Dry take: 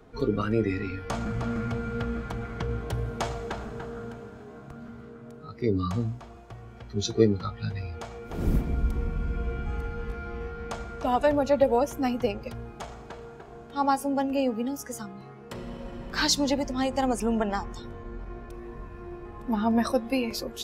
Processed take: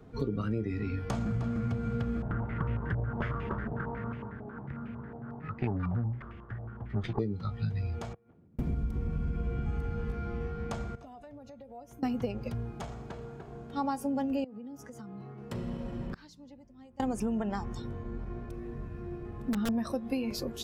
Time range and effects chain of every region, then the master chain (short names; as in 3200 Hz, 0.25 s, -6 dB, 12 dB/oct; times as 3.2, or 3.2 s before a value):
2.22–7.19 minimum comb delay 0.61 ms + stepped low-pass 11 Hz 730–2500 Hz
8.13–8.59 compressor 5:1, threshold -31 dBFS + flipped gate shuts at -33 dBFS, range -26 dB + BPF 110–2200 Hz
10.95–12.03 compressor 5:1, threshold -32 dBFS + resonator 710 Hz, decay 0.17 s, harmonics odd, mix 80%
14.44–15.38 HPF 530 Hz 6 dB/oct + tilt -3 dB/oct + compressor 12:1, threshold -41 dBFS
16.07–17 tone controls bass +2 dB, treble -4 dB + flipped gate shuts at -27 dBFS, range -27 dB
18.51–19.69 wrapped overs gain 18 dB + bell 950 Hz -6.5 dB 0.36 oct
whole clip: bell 130 Hz +10 dB 2.5 oct; compressor 12:1, threshold -23 dBFS; gain -4.5 dB